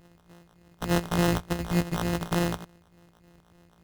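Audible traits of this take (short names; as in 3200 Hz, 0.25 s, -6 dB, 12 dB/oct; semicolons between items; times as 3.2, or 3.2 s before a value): a buzz of ramps at a fixed pitch in blocks of 256 samples; phasing stages 2, 3.4 Hz, lowest notch 300–4000 Hz; aliases and images of a low sample rate 2300 Hz, jitter 0%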